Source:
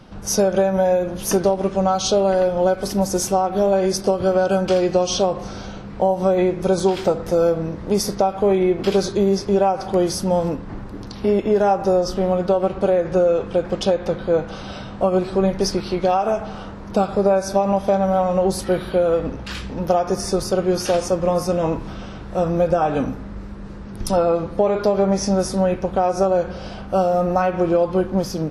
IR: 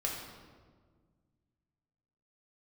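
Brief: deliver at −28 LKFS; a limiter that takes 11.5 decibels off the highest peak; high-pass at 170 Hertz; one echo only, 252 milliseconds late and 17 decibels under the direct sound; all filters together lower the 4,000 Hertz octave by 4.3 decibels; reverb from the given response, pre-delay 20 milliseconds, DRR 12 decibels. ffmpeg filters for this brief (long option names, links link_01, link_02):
-filter_complex "[0:a]highpass=170,equalizer=frequency=4000:width_type=o:gain=-6,alimiter=limit=-15.5dB:level=0:latency=1,aecho=1:1:252:0.141,asplit=2[link_01][link_02];[1:a]atrim=start_sample=2205,adelay=20[link_03];[link_02][link_03]afir=irnorm=-1:irlink=0,volume=-16dB[link_04];[link_01][link_04]amix=inputs=2:normalize=0,volume=-3dB"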